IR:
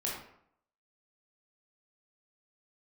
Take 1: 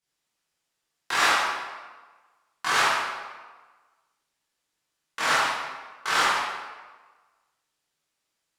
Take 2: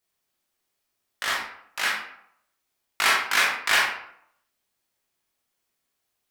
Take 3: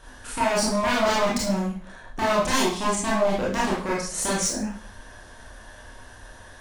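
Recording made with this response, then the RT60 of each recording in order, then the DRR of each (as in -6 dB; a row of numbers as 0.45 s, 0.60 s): 2; 1.4 s, 0.70 s, 0.50 s; -10.5 dB, -4.5 dB, -6.5 dB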